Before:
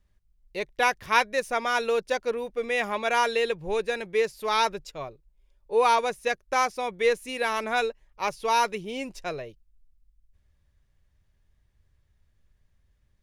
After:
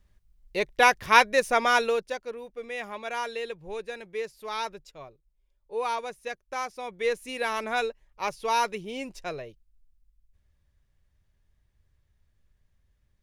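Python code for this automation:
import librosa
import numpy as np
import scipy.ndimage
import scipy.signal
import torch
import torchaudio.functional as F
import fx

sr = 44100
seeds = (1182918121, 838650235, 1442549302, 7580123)

y = fx.gain(x, sr, db=fx.line((1.74, 4.0), (2.23, -8.5), (6.64, -8.5), (7.28, -2.0)))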